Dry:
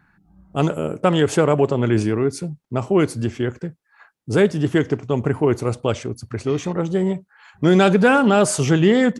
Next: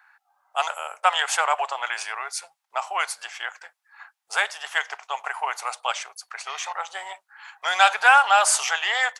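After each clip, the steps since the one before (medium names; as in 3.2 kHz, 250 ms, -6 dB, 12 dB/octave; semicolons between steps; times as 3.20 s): elliptic high-pass 760 Hz, stop band 60 dB; trim +4.5 dB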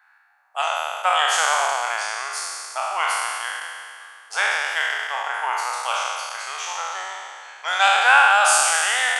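spectral sustain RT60 2.23 s; trim -3 dB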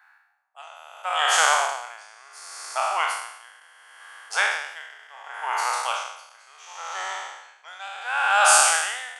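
logarithmic tremolo 0.7 Hz, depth 22 dB; trim +1.5 dB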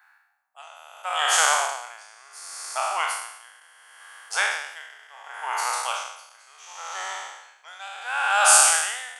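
treble shelf 7 kHz +8.5 dB; trim -2 dB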